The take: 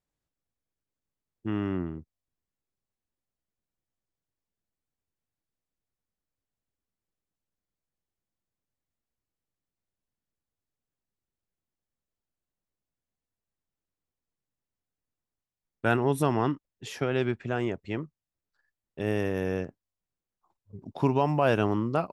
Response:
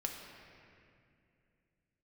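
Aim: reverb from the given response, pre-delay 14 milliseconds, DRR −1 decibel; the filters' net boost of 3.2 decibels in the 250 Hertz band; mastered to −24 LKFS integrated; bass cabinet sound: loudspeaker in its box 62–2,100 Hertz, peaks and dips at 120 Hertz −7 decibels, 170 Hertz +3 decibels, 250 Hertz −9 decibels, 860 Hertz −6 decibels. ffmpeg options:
-filter_complex "[0:a]equalizer=frequency=250:width_type=o:gain=9,asplit=2[link_01][link_02];[1:a]atrim=start_sample=2205,adelay=14[link_03];[link_02][link_03]afir=irnorm=-1:irlink=0,volume=0dB[link_04];[link_01][link_04]amix=inputs=2:normalize=0,highpass=frequency=62:width=0.5412,highpass=frequency=62:width=1.3066,equalizer=frequency=120:width_type=q:width=4:gain=-7,equalizer=frequency=170:width_type=q:width=4:gain=3,equalizer=frequency=250:width_type=q:width=4:gain=-9,equalizer=frequency=860:width_type=q:width=4:gain=-6,lowpass=frequency=2100:width=0.5412,lowpass=frequency=2100:width=1.3066"

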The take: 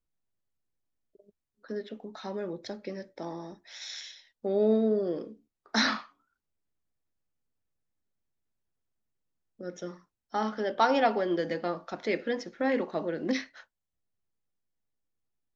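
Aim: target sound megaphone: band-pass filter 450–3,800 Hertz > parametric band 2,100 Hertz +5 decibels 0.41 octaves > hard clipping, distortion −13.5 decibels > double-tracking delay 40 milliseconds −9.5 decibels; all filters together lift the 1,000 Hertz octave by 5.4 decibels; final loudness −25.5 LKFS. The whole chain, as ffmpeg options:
ffmpeg -i in.wav -filter_complex "[0:a]highpass=450,lowpass=3800,equalizer=frequency=1000:width_type=o:gain=7.5,equalizer=frequency=2100:width_type=o:width=0.41:gain=5,asoftclip=type=hard:threshold=-16.5dB,asplit=2[link_01][link_02];[link_02]adelay=40,volume=-9.5dB[link_03];[link_01][link_03]amix=inputs=2:normalize=0,volume=4dB" out.wav

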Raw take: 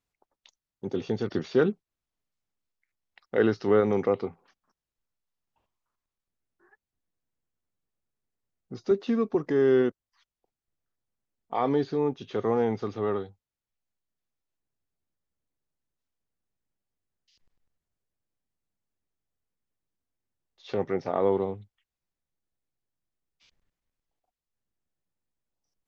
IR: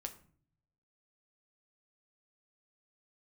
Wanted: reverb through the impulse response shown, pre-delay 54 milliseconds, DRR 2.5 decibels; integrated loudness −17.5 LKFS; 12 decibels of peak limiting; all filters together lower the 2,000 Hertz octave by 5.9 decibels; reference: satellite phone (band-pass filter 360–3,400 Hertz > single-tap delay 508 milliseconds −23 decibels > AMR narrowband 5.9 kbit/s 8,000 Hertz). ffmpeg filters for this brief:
-filter_complex "[0:a]equalizer=frequency=2000:width_type=o:gain=-8,alimiter=limit=-22.5dB:level=0:latency=1,asplit=2[link_01][link_02];[1:a]atrim=start_sample=2205,adelay=54[link_03];[link_02][link_03]afir=irnorm=-1:irlink=0,volume=0.5dB[link_04];[link_01][link_04]amix=inputs=2:normalize=0,highpass=360,lowpass=3400,aecho=1:1:508:0.0708,volume=17.5dB" -ar 8000 -c:a libopencore_amrnb -b:a 5900

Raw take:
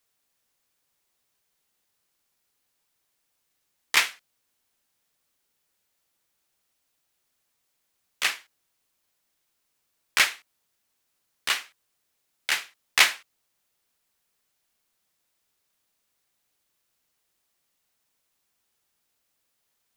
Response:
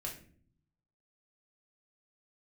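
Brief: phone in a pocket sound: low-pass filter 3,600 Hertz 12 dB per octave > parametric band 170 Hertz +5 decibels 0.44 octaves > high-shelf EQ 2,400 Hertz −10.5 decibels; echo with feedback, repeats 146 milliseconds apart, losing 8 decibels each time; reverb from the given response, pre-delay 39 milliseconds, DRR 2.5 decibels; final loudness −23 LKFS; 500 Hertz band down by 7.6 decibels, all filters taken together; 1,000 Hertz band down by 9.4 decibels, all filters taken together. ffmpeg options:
-filter_complex "[0:a]equalizer=frequency=500:width_type=o:gain=-6.5,equalizer=frequency=1000:width_type=o:gain=-8.5,aecho=1:1:146|292|438|584|730:0.398|0.159|0.0637|0.0255|0.0102,asplit=2[link_01][link_02];[1:a]atrim=start_sample=2205,adelay=39[link_03];[link_02][link_03]afir=irnorm=-1:irlink=0,volume=-2dB[link_04];[link_01][link_04]amix=inputs=2:normalize=0,lowpass=3600,equalizer=frequency=170:width_type=o:width=0.44:gain=5,highshelf=frequency=2400:gain=-10.5,volume=9dB"

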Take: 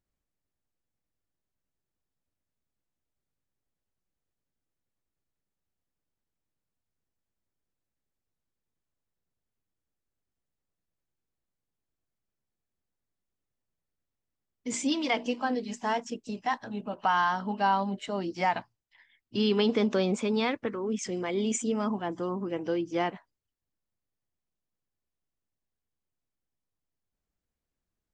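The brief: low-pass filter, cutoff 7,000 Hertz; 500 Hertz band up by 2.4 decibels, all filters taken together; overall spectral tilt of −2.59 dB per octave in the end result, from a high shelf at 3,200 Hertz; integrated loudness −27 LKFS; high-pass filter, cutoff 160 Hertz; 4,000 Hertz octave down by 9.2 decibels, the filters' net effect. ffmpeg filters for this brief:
ffmpeg -i in.wav -af "highpass=160,lowpass=7000,equalizer=frequency=500:width_type=o:gain=3.5,highshelf=frequency=3200:gain=-9,equalizer=frequency=4000:width_type=o:gain=-6.5,volume=2.5dB" out.wav

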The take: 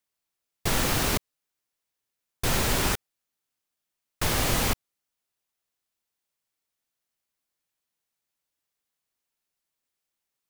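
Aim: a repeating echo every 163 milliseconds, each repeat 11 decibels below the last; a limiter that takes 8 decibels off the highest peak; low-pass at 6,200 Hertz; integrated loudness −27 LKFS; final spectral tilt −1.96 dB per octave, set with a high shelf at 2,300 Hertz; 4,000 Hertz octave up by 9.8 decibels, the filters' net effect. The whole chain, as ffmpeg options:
ffmpeg -i in.wav -af "lowpass=6200,highshelf=frequency=2300:gain=6,equalizer=frequency=4000:width_type=o:gain=7.5,alimiter=limit=-17dB:level=0:latency=1,aecho=1:1:163|326|489:0.282|0.0789|0.0221,volume=-0.5dB" out.wav

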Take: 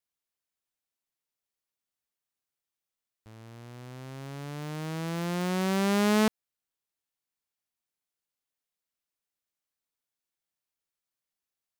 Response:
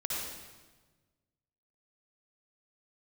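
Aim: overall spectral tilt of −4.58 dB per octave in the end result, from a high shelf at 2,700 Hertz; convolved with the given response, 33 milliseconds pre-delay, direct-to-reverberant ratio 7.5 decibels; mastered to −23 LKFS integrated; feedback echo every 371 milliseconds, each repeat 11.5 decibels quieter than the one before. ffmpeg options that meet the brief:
-filter_complex "[0:a]highshelf=frequency=2700:gain=5.5,aecho=1:1:371|742|1113:0.266|0.0718|0.0194,asplit=2[link_01][link_02];[1:a]atrim=start_sample=2205,adelay=33[link_03];[link_02][link_03]afir=irnorm=-1:irlink=0,volume=-12dB[link_04];[link_01][link_04]amix=inputs=2:normalize=0,volume=4.5dB"

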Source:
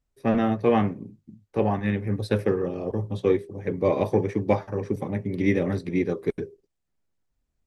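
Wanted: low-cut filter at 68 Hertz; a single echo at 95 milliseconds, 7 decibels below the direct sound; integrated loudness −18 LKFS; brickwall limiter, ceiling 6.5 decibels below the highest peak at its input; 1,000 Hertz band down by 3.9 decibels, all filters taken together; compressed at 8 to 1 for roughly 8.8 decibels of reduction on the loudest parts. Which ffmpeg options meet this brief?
ffmpeg -i in.wav -af "highpass=68,equalizer=frequency=1000:width_type=o:gain=-5.5,acompressor=threshold=-26dB:ratio=8,alimiter=limit=-22dB:level=0:latency=1,aecho=1:1:95:0.447,volume=15dB" out.wav

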